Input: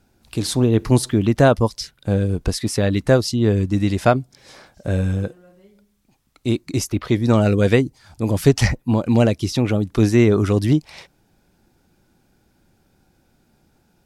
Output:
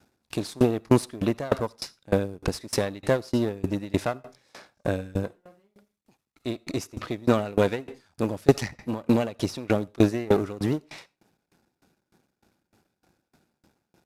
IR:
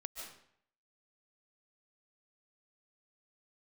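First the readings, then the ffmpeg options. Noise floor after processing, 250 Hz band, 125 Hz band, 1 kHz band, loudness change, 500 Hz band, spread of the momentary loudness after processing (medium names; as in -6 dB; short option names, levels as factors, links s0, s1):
-82 dBFS, -7.5 dB, -12.0 dB, -6.5 dB, -8.0 dB, -6.0 dB, 12 LU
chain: -filter_complex "[0:a]aeval=exprs='if(lt(val(0),0),0.251*val(0),val(0))':c=same,highpass=f=170:p=1,highshelf=f=7600:g=-4,bandreject=f=3100:w=25,asplit=2[s0][s1];[s1]alimiter=limit=0.211:level=0:latency=1:release=409,volume=0.794[s2];[s0][s2]amix=inputs=2:normalize=0,acrusher=bits=8:mode=log:mix=0:aa=0.000001,aresample=32000,aresample=44100,asplit=2[s3][s4];[1:a]atrim=start_sample=2205,asetrate=88200,aresample=44100[s5];[s4][s5]afir=irnorm=-1:irlink=0,volume=0.596[s6];[s3][s6]amix=inputs=2:normalize=0,aeval=exprs='val(0)*pow(10,-26*if(lt(mod(3.3*n/s,1),2*abs(3.3)/1000),1-mod(3.3*n/s,1)/(2*abs(3.3)/1000),(mod(3.3*n/s,1)-2*abs(3.3)/1000)/(1-2*abs(3.3)/1000))/20)':c=same"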